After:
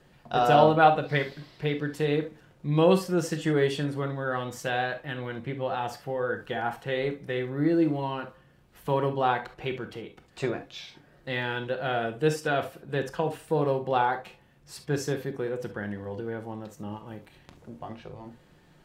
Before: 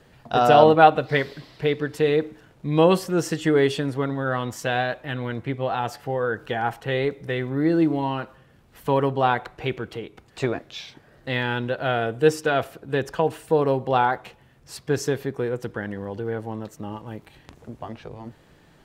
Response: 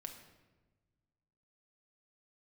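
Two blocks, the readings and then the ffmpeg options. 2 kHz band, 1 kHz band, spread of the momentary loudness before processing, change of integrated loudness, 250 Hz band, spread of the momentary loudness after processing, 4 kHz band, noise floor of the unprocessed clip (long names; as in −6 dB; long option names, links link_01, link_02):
−4.0 dB, −4.5 dB, 19 LU, −4.5 dB, −4.0 dB, 19 LU, −4.5 dB, −55 dBFS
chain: -filter_complex "[1:a]atrim=start_sample=2205,atrim=end_sample=3528[link_01];[0:a][link_01]afir=irnorm=-1:irlink=0"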